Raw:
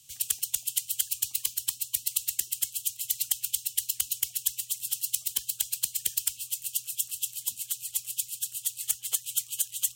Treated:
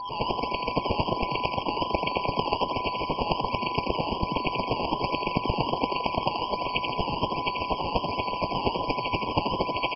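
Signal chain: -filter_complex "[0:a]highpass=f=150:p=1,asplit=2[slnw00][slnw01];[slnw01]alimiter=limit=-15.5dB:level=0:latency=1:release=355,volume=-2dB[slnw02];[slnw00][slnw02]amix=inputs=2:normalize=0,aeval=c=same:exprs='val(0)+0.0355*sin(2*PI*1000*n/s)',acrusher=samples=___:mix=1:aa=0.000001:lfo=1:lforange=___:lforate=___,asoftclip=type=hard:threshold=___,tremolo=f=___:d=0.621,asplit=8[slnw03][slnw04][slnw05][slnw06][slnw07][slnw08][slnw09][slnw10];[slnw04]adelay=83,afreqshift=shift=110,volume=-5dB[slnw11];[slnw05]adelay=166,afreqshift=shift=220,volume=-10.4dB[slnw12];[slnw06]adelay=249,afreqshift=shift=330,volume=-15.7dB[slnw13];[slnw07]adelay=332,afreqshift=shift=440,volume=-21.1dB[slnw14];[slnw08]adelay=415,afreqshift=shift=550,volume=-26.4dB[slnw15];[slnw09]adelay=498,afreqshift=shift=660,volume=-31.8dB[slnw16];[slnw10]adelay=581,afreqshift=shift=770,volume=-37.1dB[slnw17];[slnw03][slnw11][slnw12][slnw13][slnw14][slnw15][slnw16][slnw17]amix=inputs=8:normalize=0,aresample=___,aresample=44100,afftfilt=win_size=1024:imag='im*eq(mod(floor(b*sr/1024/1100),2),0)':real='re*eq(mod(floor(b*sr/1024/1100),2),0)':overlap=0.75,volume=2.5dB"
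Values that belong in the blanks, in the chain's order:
16, 16, 1.3, -14dB, 180, 11025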